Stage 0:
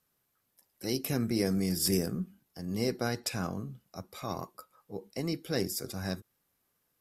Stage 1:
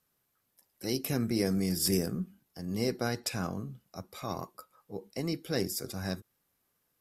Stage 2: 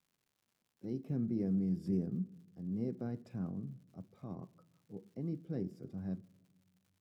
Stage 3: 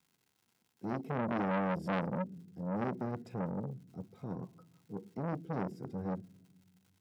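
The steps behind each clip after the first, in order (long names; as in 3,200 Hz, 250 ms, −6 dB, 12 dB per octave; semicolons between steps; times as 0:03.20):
no processing that can be heard
resonant band-pass 180 Hz, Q 1.3; surface crackle 180 per second −60 dBFS; on a send at −21 dB: convolution reverb RT60 1.3 s, pre-delay 3 ms; on the sum: level −2 dB
notch comb filter 590 Hz; saturating transformer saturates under 1,300 Hz; level +7 dB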